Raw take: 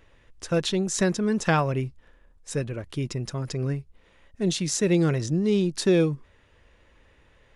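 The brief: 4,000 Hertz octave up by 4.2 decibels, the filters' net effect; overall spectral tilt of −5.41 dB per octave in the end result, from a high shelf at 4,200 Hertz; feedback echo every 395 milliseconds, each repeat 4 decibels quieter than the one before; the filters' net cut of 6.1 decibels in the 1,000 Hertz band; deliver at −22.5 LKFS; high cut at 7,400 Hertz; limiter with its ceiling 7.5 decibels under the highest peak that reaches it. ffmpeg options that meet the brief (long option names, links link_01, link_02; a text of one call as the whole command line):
ffmpeg -i in.wav -af "lowpass=7400,equalizer=frequency=1000:width_type=o:gain=-9,equalizer=frequency=4000:width_type=o:gain=8.5,highshelf=frequency=4200:gain=-4.5,alimiter=limit=-18dB:level=0:latency=1,aecho=1:1:395|790|1185|1580|1975|2370|2765|3160|3555:0.631|0.398|0.25|0.158|0.0994|0.0626|0.0394|0.0249|0.0157,volume=4.5dB" out.wav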